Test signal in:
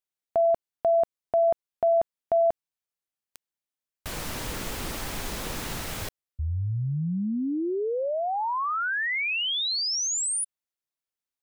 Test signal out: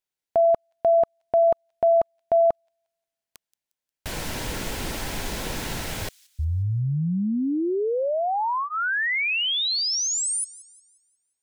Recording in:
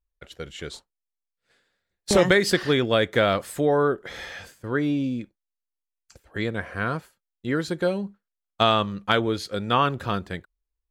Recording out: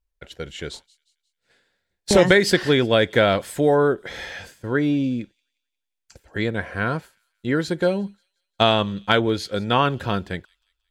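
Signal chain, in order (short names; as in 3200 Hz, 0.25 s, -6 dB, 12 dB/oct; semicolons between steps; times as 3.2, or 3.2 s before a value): high shelf 9900 Hz -4.5 dB; notch 1200 Hz, Q 7.4; on a send: thin delay 0.178 s, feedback 41%, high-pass 4200 Hz, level -19 dB; on the sum: gain +3.5 dB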